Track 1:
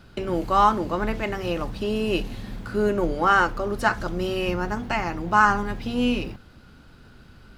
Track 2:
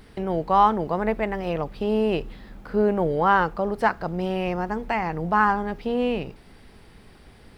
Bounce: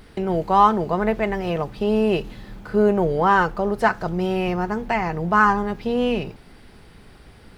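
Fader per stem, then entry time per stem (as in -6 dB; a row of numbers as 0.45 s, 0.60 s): -6.5 dB, +2.0 dB; 0.00 s, 0.00 s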